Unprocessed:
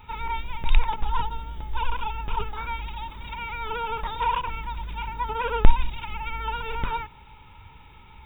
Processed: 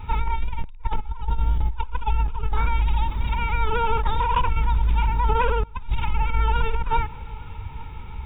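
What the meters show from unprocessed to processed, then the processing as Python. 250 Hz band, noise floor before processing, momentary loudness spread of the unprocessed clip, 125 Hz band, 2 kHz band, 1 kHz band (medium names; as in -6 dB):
+3.0 dB, -49 dBFS, 11 LU, +8.5 dB, +1.5 dB, +3.0 dB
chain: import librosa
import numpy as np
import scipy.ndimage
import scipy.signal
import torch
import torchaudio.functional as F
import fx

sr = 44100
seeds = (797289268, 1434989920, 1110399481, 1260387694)

y = fx.low_shelf(x, sr, hz=160.0, db=10.0)
y = fx.over_compress(y, sr, threshold_db=-24.0, ratio=-1.0)
y = fx.high_shelf(y, sr, hz=3100.0, db=-8.0)
y = fx.echo_feedback(y, sr, ms=862, feedback_pct=48, wet_db=-23)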